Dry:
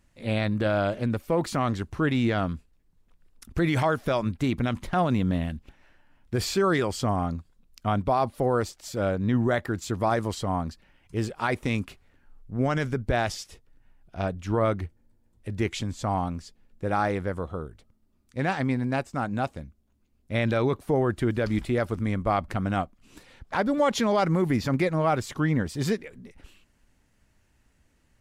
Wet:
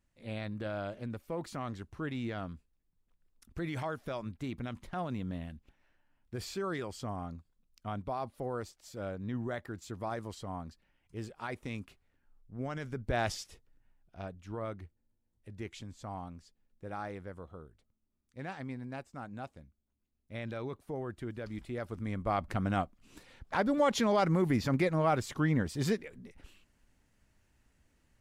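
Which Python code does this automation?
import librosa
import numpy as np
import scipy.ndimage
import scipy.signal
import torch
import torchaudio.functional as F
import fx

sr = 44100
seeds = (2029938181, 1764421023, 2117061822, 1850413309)

y = fx.gain(x, sr, db=fx.line((12.83, -13.0), (13.29, -4.0), (14.36, -15.0), (21.58, -15.0), (22.55, -4.5)))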